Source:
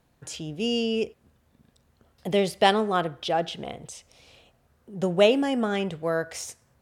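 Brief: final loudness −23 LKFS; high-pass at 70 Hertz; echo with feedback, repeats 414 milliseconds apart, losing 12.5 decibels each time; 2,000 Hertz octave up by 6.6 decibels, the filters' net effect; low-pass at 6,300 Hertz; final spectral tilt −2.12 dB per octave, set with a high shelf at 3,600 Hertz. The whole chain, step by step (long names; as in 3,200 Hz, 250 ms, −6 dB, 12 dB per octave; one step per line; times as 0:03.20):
high-pass filter 70 Hz
low-pass filter 6,300 Hz
parametric band 2,000 Hz +7.5 dB
high-shelf EQ 3,600 Hz +4 dB
repeating echo 414 ms, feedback 24%, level −12.5 dB
level +0.5 dB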